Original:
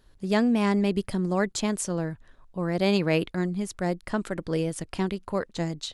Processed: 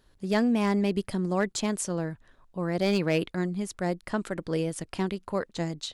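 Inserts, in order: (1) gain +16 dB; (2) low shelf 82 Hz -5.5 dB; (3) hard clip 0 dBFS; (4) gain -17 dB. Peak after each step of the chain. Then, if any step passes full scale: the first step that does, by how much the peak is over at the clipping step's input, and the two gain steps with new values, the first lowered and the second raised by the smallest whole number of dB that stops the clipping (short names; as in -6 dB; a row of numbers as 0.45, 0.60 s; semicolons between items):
+6.0, +5.5, 0.0, -17.0 dBFS; step 1, 5.5 dB; step 1 +10 dB, step 4 -11 dB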